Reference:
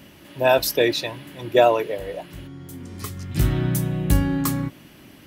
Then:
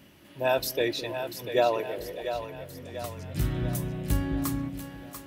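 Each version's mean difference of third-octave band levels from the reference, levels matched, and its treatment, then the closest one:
4.0 dB: echo with a time of its own for lows and highs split 410 Hz, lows 209 ms, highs 691 ms, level −8.5 dB
level −8 dB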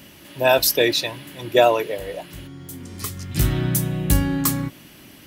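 2.0 dB: high-shelf EQ 2,800 Hz +7 dB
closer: second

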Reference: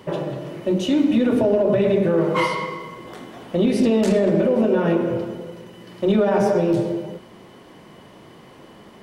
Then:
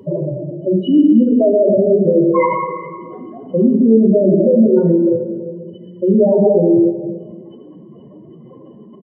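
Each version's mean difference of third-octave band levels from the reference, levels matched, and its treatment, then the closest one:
12.0 dB: expanding power law on the bin magnitudes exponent 3.3
on a send: echo with shifted repeats 126 ms, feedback 40%, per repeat +40 Hz, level −21 dB
on the sum: dense smooth reverb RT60 1.5 s, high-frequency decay 0.8×, pre-delay 0 ms, DRR 6 dB
level +6 dB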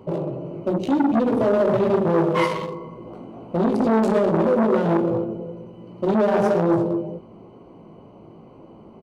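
5.0 dB: adaptive Wiener filter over 25 samples
double-tracking delay 18 ms −8 dB
saturating transformer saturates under 670 Hz
level +1 dB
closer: second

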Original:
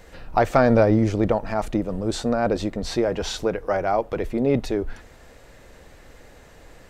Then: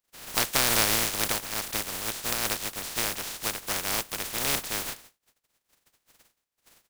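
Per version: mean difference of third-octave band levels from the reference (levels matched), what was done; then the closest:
14.5 dB: compressing power law on the bin magnitudes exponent 0.13
noise gate −43 dBFS, range −33 dB
level −7 dB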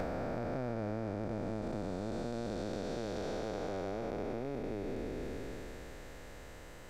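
11.0 dB: spectrum smeared in time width 1,170 ms
downward compressor 6 to 1, threshold −35 dBFS, peak gain reduction 15 dB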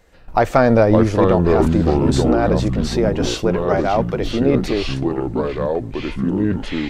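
7.0 dB: noise gate −34 dBFS, range −11 dB
delay with pitch and tempo change per echo 441 ms, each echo −5 semitones, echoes 2
level +3.5 dB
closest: third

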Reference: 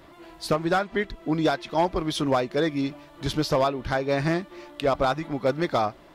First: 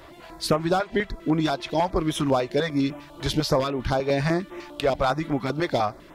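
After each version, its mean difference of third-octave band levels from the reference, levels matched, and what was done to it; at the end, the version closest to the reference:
3.0 dB: downward compressor 2 to 1, threshold −25 dBFS, peak gain reduction 4.5 dB
notch on a step sequencer 10 Hz 210–4,500 Hz
level +5.5 dB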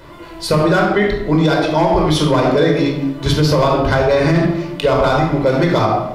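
6.0 dB: rectangular room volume 2,200 cubic metres, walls furnished, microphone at 4.9 metres
brickwall limiter −12.5 dBFS, peak gain reduction 9 dB
level +7.5 dB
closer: first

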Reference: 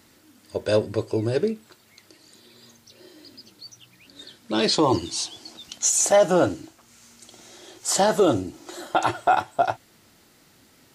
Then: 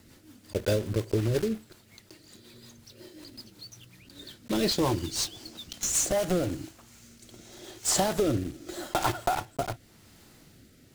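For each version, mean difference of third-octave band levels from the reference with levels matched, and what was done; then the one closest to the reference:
6.5 dB: one scale factor per block 3 bits
low-shelf EQ 170 Hz +11 dB
downward compressor 6 to 1, threshold −21 dBFS, peak gain reduction 9.5 dB
rotating-speaker cabinet horn 5.5 Hz, later 0.85 Hz, at 0:05.75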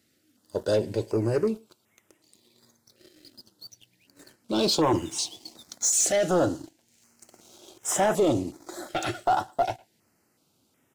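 4.0 dB: high-pass filter 77 Hz
leveller curve on the samples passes 2
far-end echo of a speakerphone 110 ms, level −23 dB
notch on a step sequencer 2.7 Hz 970–4,400 Hz
level −7.5 dB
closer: second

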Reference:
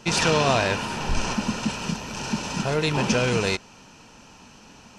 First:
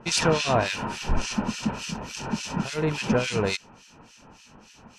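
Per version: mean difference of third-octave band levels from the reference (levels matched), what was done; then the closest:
5.5 dB: two-band tremolo in antiphase 3.5 Hz, depth 100%, crossover 1,800 Hz
level +2 dB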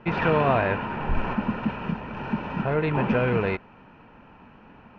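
7.0 dB: low-pass filter 2,200 Hz 24 dB per octave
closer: first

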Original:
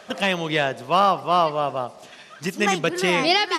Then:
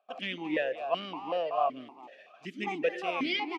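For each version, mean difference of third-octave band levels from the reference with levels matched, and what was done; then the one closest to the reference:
8.5 dB: noise gate with hold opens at −34 dBFS
far-end echo of a speakerphone 220 ms, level −7 dB
formant filter that steps through the vowels 5.3 Hz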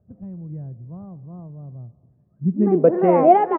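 18.0 dB: low-pass filter 2,300 Hz 24 dB per octave
low-pass filter sweep 100 Hz → 680 Hz, 0:02.30–0:02.94
on a send: repeating echo 307 ms, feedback 47%, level −23.5 dB
on the sum: one half of a high-frequency compander decoder only
level +4 dB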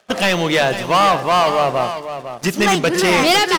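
6.5 dB: mains-hum notches 50/100/150 Hz
noise gate −39 dBFS, range −7 dB
leveller curve on the samples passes 3
on a send: single-tap delay 503 ms −10.5 dB
on the sum: level −1 dB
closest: third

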